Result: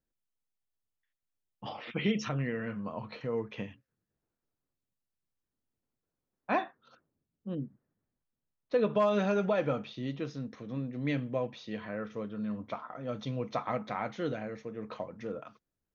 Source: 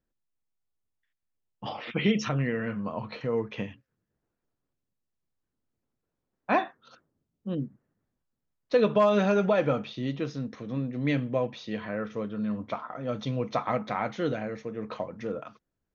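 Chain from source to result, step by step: 6.64–8.93 high shelf 5100 Hz -> 3700 Hz -10 dB; gain -5 dB

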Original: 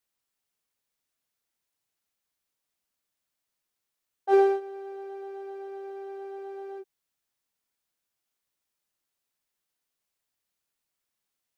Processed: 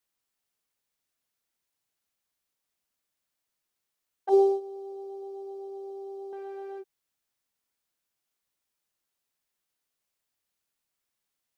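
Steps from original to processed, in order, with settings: 4.29–6.33 Butterworth band-stop 1800 Hz, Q 0.51

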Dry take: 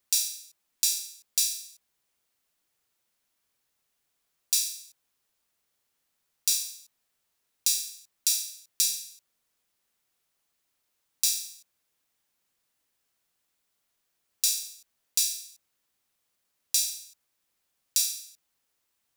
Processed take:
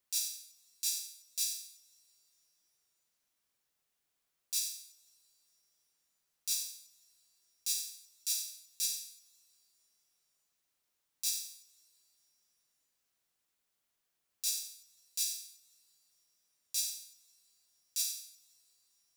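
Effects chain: two-slope reverb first 0.3 s, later 3.7 s, from -21 dB, DRR 16 dB; limiter -14.5 dBFS, peak gain reduction 10.5 dB; gain -5.5 dB

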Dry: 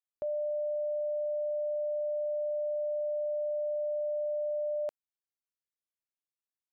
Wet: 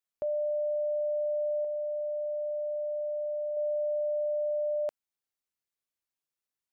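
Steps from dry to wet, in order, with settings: 1.64–3.57 dynamic EQ 590 Hz, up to -3 dB, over -43 dBFS; gain +2.5 dB

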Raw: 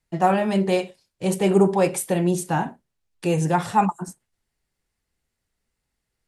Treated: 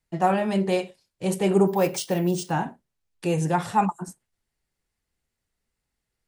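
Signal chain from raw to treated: 1.67–2.51 careless resampling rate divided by 3×, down none, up hold; gain -2.5 dB

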